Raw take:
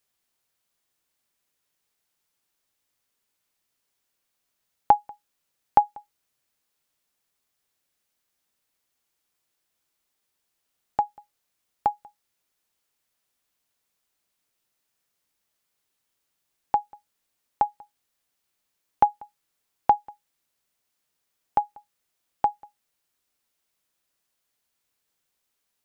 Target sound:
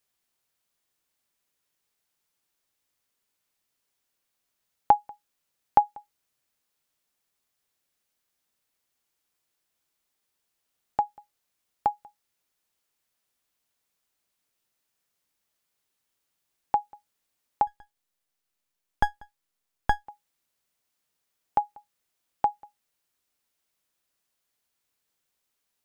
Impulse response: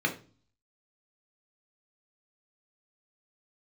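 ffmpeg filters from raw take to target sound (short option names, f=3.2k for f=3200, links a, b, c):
-filter_complex "[0:a]asettb=1/sr,asplit=3[a][b][c];[a]atrim=end=17.674[d];[b]atrim=start=17.67:end=20.07,asetpts=PTS-STARTPTS,afade=t=in:d=0.004:c=qsin,afade=t=out:st=2.396:d=0.004:c=qsin,aeval=exprs='max(val(0),0)':c=same[e];[c]atrim=start=20.066[f];[d][e]acrossfade=d=0.004:c1=hsin:c2=qsin[g];[g][f]acrossfade=d=0.004:c1=qsin:c2=hsin,volume=-1.5dB"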